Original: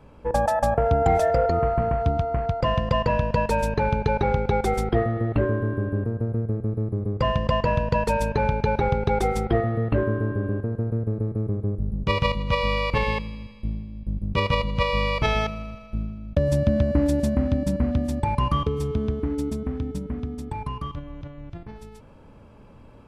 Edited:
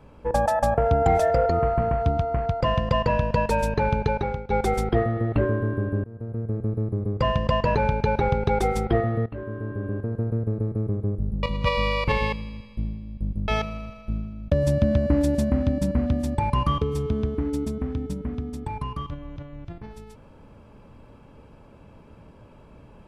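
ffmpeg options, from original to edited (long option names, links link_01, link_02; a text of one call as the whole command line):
ffmpeg -i in.wav -filter_complex "[0:a]asplit=7[link_01][link_02][link_03][link_04][link_05][link_06][link_07];[link_01]atrim=end=4.5,asetpts=PTS-STARTPTS,afade=type=out:start_time=4.02:duration=0.48:silence=0.16788[link_08];[link_02]atrim=start=4.5:end=6.04,asetpts=PTS-STARTPTS,afade=type=in:duration=0.004:curve=hsin:silence=0.16788,afade=type=out:start_time=1.536:duration=0.004:curve=hsin:silence=0.1[link_09];[link_03]atrim=start=6.04:end=7.752,asetpts=PTS-STARTPTS,afade=type=in:duration=0.58:silence=0.1[link_10];[link_04]atrim=start=8.348:end=9.86,asetpts=PTS-STARTPTS,afade=type=out:start_time=1.508:duration=0.004:curve=hsin:silence=0.133352[link_11];[link_05]atrim=start=9.86:end=12.032,asetpts=PTS-STARTPTS,afade=type=in:duration=0.96:silence=0.133352[link_12];[link_06]atrim=start=12.288:end=14.342[link_13];[link_07]atrim=start=15.328[link_14];[link_08][link_09][link_10]concat=n=3:v=0:a=1[link_15];[link_11][link_12]concat=n=2:v=0:a=1[link_16];[link_15][link_16]acrossfade=duration=0.004:curve1=hsin:curve2=hsin[link_17];[link_17][link_13]acrossfade=duration=0.004:curve1=hsin:curve2=hsin[link_18];[link_18][link_14]acrossfade=duration=0.004:curve1=hsin:curve2=hsin" out.wav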